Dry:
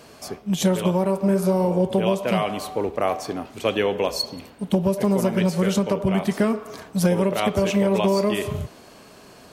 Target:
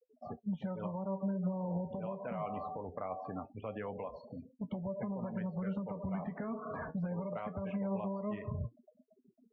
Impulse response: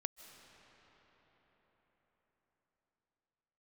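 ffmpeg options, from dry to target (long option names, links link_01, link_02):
-filter_complex "[0:a]asettb=1/sr,asplit=3[link_01][link_02][link_03];[link_01]atrim=end=4.714[link_04];[link_02]atrim=start=4.71:end=6.91,asetpts=PTS-STARTPTS,afade=type=in:duration=0.004:curve=qsin,afade=type=out:start_time=2.196:duration=0.004:curve=qsin,aeval=exprs='val(0)+0.5*0.02*sgn(val(0))':channel_layout=same[link_05];[link_03]atrim=start=6.906[link_06];[link_04][link_05]acrossfade=duration=0.004:curve1=hsin:curve2=qsin[link_07];[link_07][link_06]acrossfade=duration=0.004:curve1=qsin:curve2=hsin,acompressor=threshold=-24dB:ratio=2.5,afftfilt=real='re*gte(hypot(re,im),0.0282)':imag='im*gte(hypot(re,im),0.0282)':win_size=1024:overlap=0.75,alimiter=limit=-23.5dB:level=0:latency=1:release=326,flanger=delay=7.7:depth=5.1:regen=58:speed=0.22:shape=triangular,lowpass=frequency=1800:width=0.5412,lowpass=frequency=1800:width=1.3066,equalizer=frequency=360:width=2.5:gain=-12,volume=1dB"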